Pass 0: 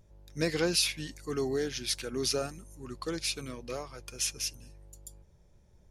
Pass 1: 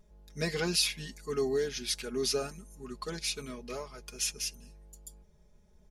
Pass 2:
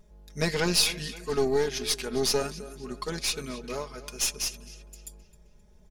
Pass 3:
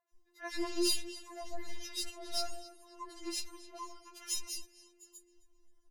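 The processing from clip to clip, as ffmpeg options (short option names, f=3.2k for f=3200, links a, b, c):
-af "aecho=1:1:4.8:0.83,volume=-3dB"
-filter_complex "[0:a]asplit=2[a][b];[b]adelay=263,lowpass=f=4.6k:p=1,volume=-15dB,asplit=2[c][d];[d]adelay=263,lowpass=f=4.6k:p=1,volume=0.5,asplit=2[e][f];[f]adelay=263,lowpass=f=4.6k:p=1,volume=0.5,asplit=2[g][h];[h]adelay=263,lowpass=f=4.6k:p=1,volume=0.5,asplit=2[i][j];[j]adelay=263,lowpass=f=4.6k:p=1,volume=0.5[k];[a][c][e][g][i][k]amix=inputs=6:normalize=0,aeval=exprs='0.2*(cos(1*acos(clip(val(0)/0.2,-1,1)))-cos(1*PI/2))+0.01*(cos(4*acos(clip(val(0)/0.2,-1,1)))-cos(4*PI/2))+0.01*(cos(8*acos(clip(val(0)/0.2,-1,1)))-cos(8*PI/2))':c=same,volume=4.5dB"
-filter_complex "[0:a]acrossover=split=540|2200[a][b][c];[c]adelay=90[d];[a]adelay=150[e];[e][b][d]amix=inputs=3:normalize=0,afftfilt=real='re*4*eq(mod(b,16),0)':imag='im*4*eq(mod(b,16),0)':win_size=2048:overlap=0.75,volume=-7dB"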